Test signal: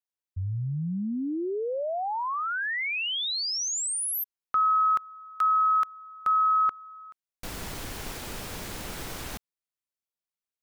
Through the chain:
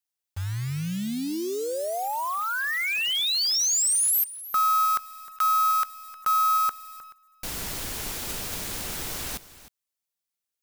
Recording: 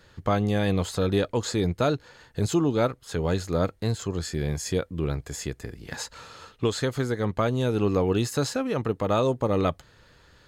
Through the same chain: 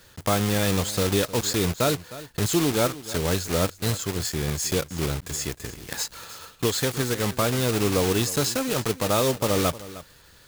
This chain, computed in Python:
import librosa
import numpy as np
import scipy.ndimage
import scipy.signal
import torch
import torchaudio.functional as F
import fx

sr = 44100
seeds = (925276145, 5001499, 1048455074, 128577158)

y = fx.block_float(x, sr, bits=3)
y = fx.high_shelf(y, sr, hz=3200.0, db=7.5)
y = y + 10.0 ** (-16.5 / 20.0) * np.pad(y, (int(309 * sr / 1000.0), 0))[:len(y)]